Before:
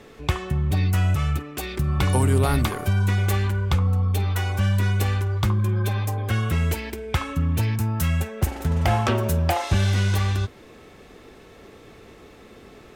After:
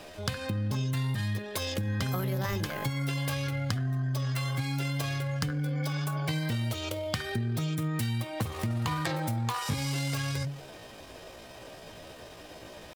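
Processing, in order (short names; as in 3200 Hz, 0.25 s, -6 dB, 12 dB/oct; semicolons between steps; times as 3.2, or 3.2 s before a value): median filter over 3 samples; high shelf 2600 Hz +5 dB; notches 50/100/150/200/250/300/350/400 Hz; compressor, threshold -28 dBFS, peak gain reduction 11.5 dB; pitch shift +6 st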